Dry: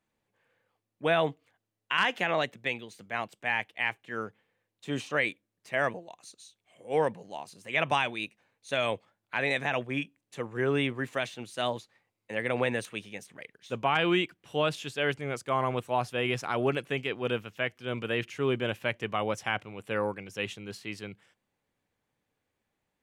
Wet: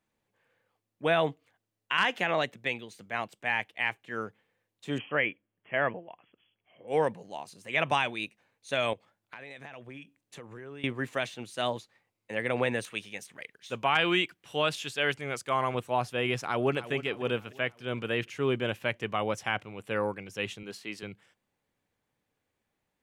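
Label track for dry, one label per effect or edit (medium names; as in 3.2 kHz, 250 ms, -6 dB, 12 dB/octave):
4.980000	6.880000	brick-wall FIR low-pass 3.4 kHz
8.930000	10.840000	compression 8:1, threshold -41 dBFS
12.860000	15.750000	tilt shelf lows -3.5 dB, about 850 Hz
16.450000	16.920000	echo throw 300 ms, feedback 50%, level -14.5 dB
20.630000	21.030000	high-pass 200 Hz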